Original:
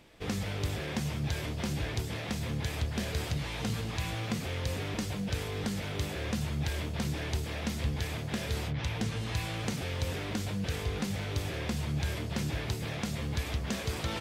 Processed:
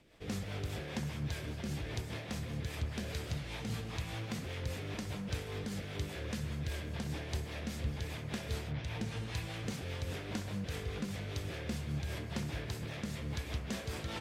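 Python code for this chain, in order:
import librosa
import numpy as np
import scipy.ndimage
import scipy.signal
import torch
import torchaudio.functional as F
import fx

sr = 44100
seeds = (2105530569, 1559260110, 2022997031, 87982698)

p1 = fx.rotary(x, sr, hz=5.0)
p2 = p1 + fx.echo_wet_bandpass(p1, sr, ms=64, feedback_pct=74, hz=1100.0, wet_db=-8, dry=0)
y = F.gain(torch.from_numpy(p2), -4.0).numpy()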